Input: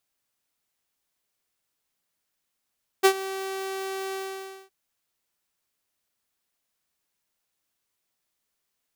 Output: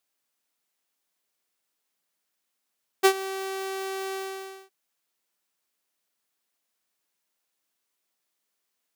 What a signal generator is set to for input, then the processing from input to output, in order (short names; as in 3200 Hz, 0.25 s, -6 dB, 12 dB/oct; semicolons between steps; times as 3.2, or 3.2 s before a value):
ADSR saw 385 Hz, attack 22 ms, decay 75 ms, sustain -17.5 dB, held 1.11 s, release 0.555 s -10 dBFS
HPF 190 Hz 12 dB/oct